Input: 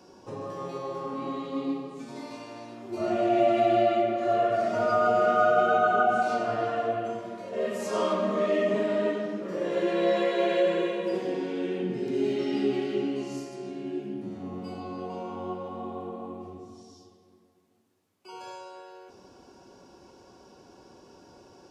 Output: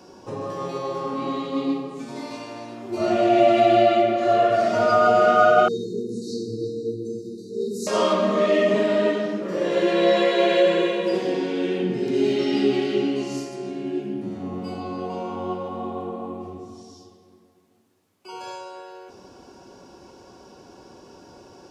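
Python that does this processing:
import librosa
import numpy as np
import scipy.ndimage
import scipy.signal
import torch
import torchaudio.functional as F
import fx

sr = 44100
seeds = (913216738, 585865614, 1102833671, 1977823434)

y = fx.brickwall_bandstop(x, sr, low_hz=490.0, high_hz=3700.0, at=(5.68, 7.87))
y = fx.dynamic_eq(y, sr, hz=4300.0, q=0.89, threshold_db=-50.0, ratio=4.0, max_db=5)
y = y * librosa.db_to_amplitude(6.0)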